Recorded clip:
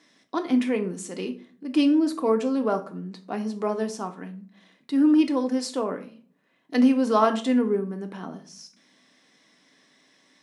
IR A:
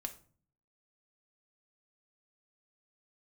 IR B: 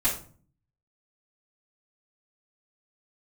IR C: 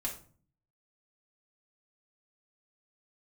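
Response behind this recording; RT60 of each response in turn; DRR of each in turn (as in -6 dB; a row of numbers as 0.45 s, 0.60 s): A; 0.45 s, 0.45 s, 0.45 s; 5.0 dB, -12.0 dB, -3.5 dB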